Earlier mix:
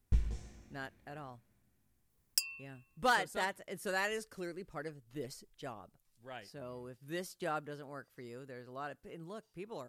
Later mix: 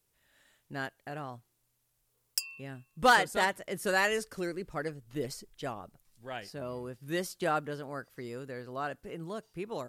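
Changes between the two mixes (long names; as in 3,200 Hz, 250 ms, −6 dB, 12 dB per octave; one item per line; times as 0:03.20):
speech +7.5 dB
first sound: muted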